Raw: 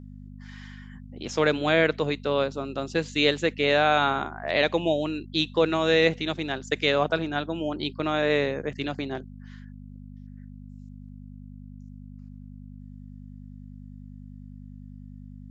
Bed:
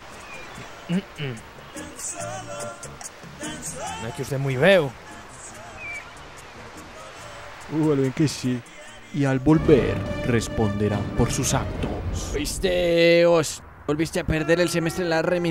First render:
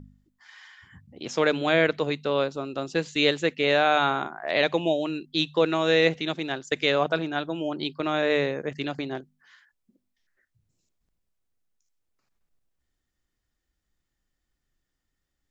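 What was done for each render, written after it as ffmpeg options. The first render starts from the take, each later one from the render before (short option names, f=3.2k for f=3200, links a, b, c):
-af "bandreject=f=50:t=h:w=4,bandreject=f=100:t=h:w=4,bandreject=f=150:t=h:w=4,bandreject=f=200:t=h:w=4,bandreject=f=250:t=h:w=4"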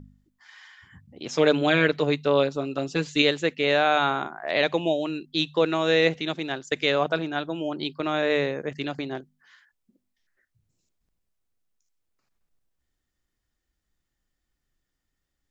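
-filter_complex "[0:a]asettb=1/sr,asplit=3[a][b][c];[a]atrim=end=1.314[d];[b]atrim=start=1.31:end=3.22,asetpts=PTS-STARTPTS,afade=t=in:d=0.004:c=qsin,afade=t=out:st=1.906:d=0.004:c=qsin,aecho=1:1:6.9:0.74,atrim=end_sample=84231[e];[c]atrim=start=3.216[f];[d][e]acrossfade=d=0.004:c1=hsin:c2=qsin[g];[g][f]acrossfade=d=0.004:c1=qsin:c2=hsin"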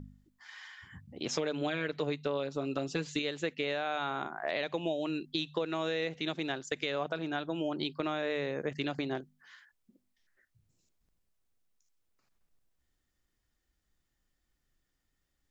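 -af "alimiter=limit=-15.5dB:level=0:latency=1:release=331,acompressor=threshold=-30dB:ratio=4"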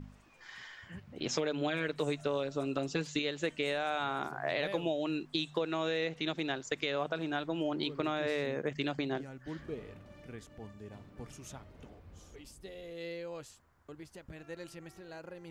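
-filter_complex "[1:a]volume=-25.5dB[a];[0:a][a]amix=inputs=2:normalize=0"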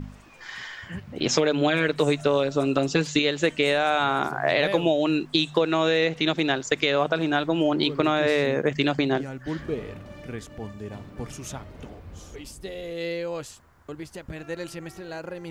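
-af "volume=11.5dB"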